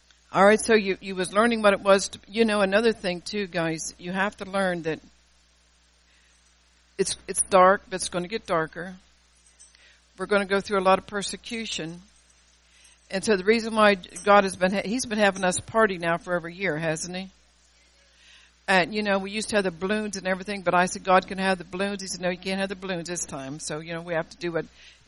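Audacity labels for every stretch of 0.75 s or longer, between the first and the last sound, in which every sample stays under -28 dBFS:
4.940000	6.990000	silence
8.850000	10.210000	silence
11.880000	13.110000	silence
17.220000	18.680000	silence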